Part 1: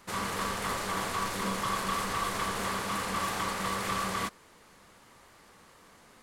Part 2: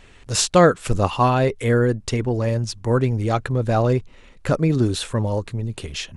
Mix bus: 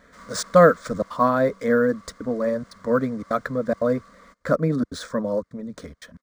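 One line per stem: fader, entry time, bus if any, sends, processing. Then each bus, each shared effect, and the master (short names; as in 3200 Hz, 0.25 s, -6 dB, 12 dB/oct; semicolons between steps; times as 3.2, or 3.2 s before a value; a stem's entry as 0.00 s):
-10.5 dB, 0.05 s, no send, vocal rider; small resonant body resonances 2100 Hz, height 11 dB; auto duck -7 dB, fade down 1.40 s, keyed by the second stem
+2.5 dB, 0.00 s, no send, tone controls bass -3 dB, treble -6 dB; step gate "xxxxx.xxxxxx." 177 bpm -60 dB; HPF 66 Hz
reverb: off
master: fixed phaser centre 550 Hz, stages 8; decimation joined by straight lines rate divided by 3×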